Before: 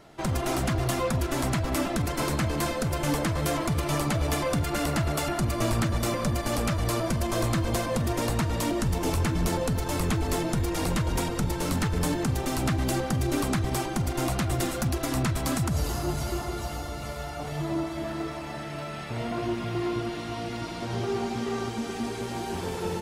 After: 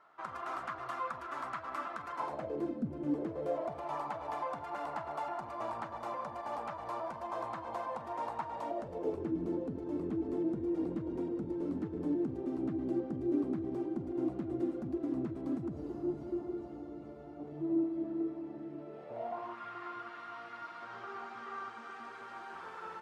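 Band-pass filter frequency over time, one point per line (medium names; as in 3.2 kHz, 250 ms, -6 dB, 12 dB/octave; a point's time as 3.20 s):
band-pass filter, Q 3.8
2.12 s 1.2 kHz
2.83 s 230 Hz
3.94 s 900 Hz
8.53 s 900 Hz
9.34 s 320 Hz
18.78 s 320 Hz
19.62 s 1.3 kHz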